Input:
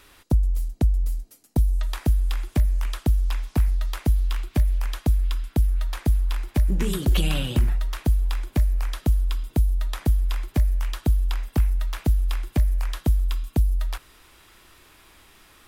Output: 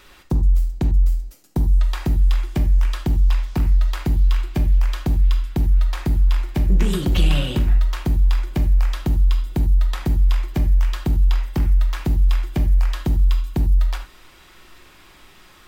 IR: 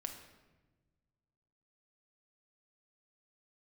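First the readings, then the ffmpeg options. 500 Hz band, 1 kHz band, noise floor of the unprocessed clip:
+3.0 dB, +3.5 dB, -54 dBFS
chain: -filter_complex "[0:a]asoftclip=type=tanh:threshold=-15.5dB,equalizer=f=11k:w=1.5:g=-8.5[a];[1:a]atrim=start_sample=2205,atrim=end_sample=4410[b];[a][b]afir=irnorm=-1:irlink=0,volume=7dB"

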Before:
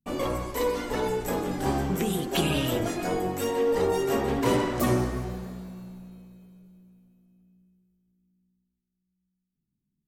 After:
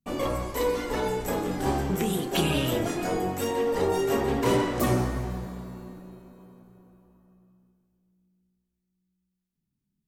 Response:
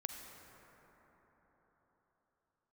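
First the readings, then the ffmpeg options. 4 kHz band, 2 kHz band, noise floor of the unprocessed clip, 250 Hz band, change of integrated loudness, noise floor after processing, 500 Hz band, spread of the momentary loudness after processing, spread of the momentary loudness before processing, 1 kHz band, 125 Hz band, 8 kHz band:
+0.5 dB, +0.5 dB, -82 dBFS, 0.0 dB, 0.0 dB, -81 dBFS, 0.0 dB, 12 LU, 13 LU, +0.5 dB, +0.5 dB, +0.5 dB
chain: -filter_complex "[0:a]asplit=2[a][b];[1:a]atrim=start_sample=2205,adelay=31[c];[b][c]afir=irnorm=-1:irlink=0,volume=-9dB[d];[a][d]amix=inputs=2:normalize=0"

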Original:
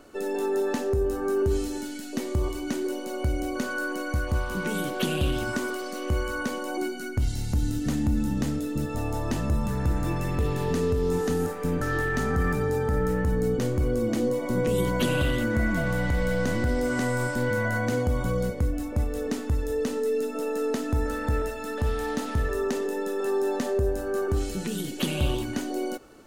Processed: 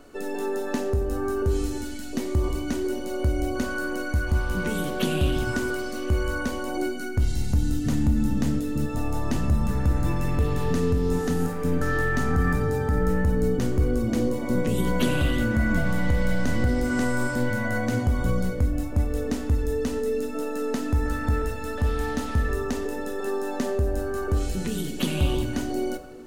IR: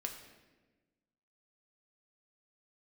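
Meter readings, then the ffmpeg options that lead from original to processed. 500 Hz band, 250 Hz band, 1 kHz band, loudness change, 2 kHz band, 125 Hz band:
-1.0 dB, +2.0 dB, +0.5 dB, +1.5 dB, +1.0 dB, +2.5 dB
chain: -filter_complex "[0:a]asplit=2[a][b];[1:a]atrim=start_sample=2205,lowshelf=f=150:g=8[c];[b][c]afir=irnorm=-1:irlink=0,volume=2.5dB[d];[a][d]amix=inputs=2:normalize=0,volume=-6dB"

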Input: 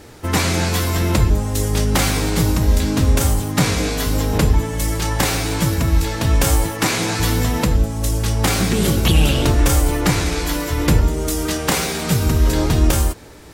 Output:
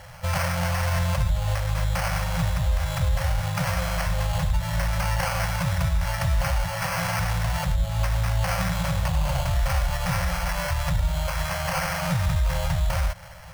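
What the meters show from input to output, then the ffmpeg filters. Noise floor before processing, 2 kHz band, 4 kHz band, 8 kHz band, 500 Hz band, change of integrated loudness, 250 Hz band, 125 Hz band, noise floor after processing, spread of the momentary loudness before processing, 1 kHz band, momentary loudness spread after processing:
-27 dBFS, -4.5 dB, -9.5 dB, -12.0 dB, -9.5 dB, -7.5 dB, -13.5 dB, -6.0 dB, -30 dBFS, 4 LU, -4.0 dB, 2 LU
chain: -af "alimiter=limit=-14.5dB:level=0:latency=1:release=135,acrusher=samples=12:mix=1:aa=0.000001,afftfilt=real='re*(1-between(b*sr/4096,190,500))':imag='im*(1-between(b*sr/4096,190,500))':win_size=4096:overlap=0.75"

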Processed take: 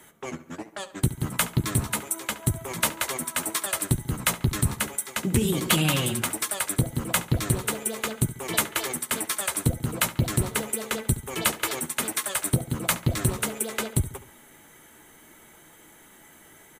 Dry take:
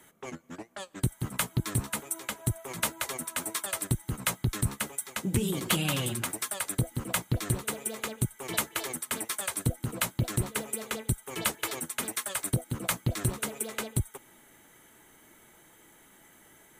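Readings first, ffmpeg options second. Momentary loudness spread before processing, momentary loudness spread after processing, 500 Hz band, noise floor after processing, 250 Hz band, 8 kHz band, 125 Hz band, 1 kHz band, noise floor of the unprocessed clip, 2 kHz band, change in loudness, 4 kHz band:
4 LU, 5 LU, +5.5 dB, -53 dBFS, +5.5 dB, +5.0 dB, +4.5 dB, +5.5 dB, -58 dBFS, +5.5 dB, +5.0 dB, +5.5 dB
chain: -filter_complex "[0:a]asplit=2[a][b];[b]adelay=13,volume=-13dB[c];[a][c]amix=inputs=2:normalize=0,asplit=2[d][e];[e]adelay=70,lowpass=f=3.6k:p=1,volume=-14dB,asplit=2[f][g];[g]adelay=70,lowpass=f=3.6k:p=1,volume=0.44,asplit=2[h][i];[i]adelay=70,lowpass=f=3.6k:p=1,volume=0.44,asplit=2[j][k];[k]adelay=70,lowpass=f=3.6k:p=1,volume=0.44[l];[d][f][h][j][l]amix=inputs=5:normalize=0,volume=5dB"

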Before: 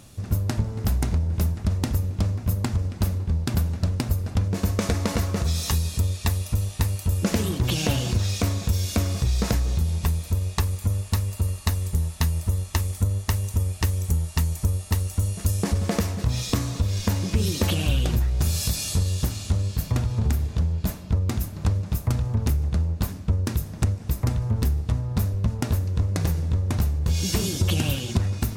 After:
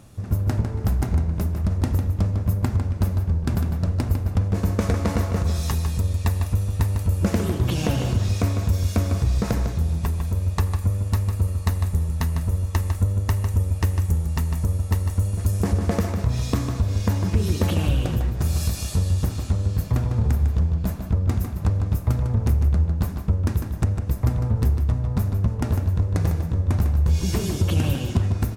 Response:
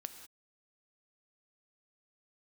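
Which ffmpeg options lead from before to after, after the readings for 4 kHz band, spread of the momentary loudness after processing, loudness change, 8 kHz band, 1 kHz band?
-5.5 dB, 3 LU, +2.0 dB, -5.0 dB, +1.5 dB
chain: -filter_complex "[0:a]asplit=2[a][b];[b]adelay=151.6,volume=-7dB,highshelf=f=4k:g=-3.41[c];[a][c]amix=inputs=2:normalize=0,asplit=2[d][e];[1:a]atrim=start_sample=2205,lowpass=2.3k[f];[e][f]afir=irnorm=-1:irlink=0,volume=4dB[g];[d][g]amix=inputs=2:normalize=0,volume=-5dB"

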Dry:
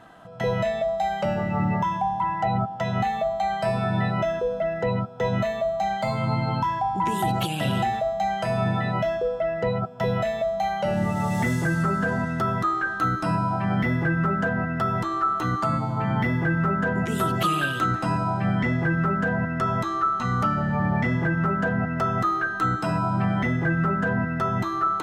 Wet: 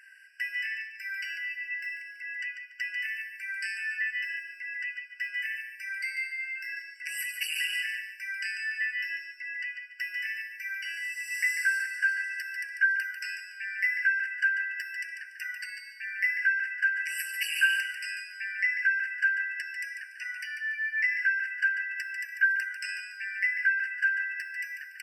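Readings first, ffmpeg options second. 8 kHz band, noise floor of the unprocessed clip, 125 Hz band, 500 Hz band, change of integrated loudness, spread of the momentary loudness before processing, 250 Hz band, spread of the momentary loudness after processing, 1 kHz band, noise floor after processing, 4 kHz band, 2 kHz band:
+1.0 dB, -31 dBFS, under -40 dB, under -40 dB, -5.5 dB, 3 LU, under -40 dB, 11 LU, under -40 dB, -48 dBFS, -1.0 dB, +4.0 dB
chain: -af "aecho=1:1:144|288|432:0.422|0.114|0.0307,afftfilt=real='re*eq(mod(floor(b*sr/1024/1500),2),1)':imag='im*eq(mod(floor(b*sr/1024/1500),2),1)':win_size=1024:overlap=0.75,volume=4dB"

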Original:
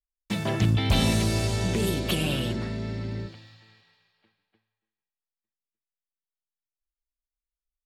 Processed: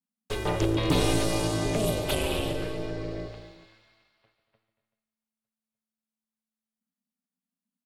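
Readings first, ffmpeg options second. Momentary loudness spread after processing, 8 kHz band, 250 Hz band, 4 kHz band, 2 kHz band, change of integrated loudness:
13 LU, 0.0 dB, -2.0 dB, -2.5 dB, -2.0 dB, -1.5 dB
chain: -af "equalizer=f=400:t=o:w=0.67:g=5,equalizer=f=1k:t=o:w=0.67:g=5,equalizer=f=10k:t=o:w=0.67:g=4,aeval=exprs='val(0)*sin(2*PI*220*n/s)':c=same,aecho=1:1:142|232|253|382:0.2|0.178|0.158|0.126"

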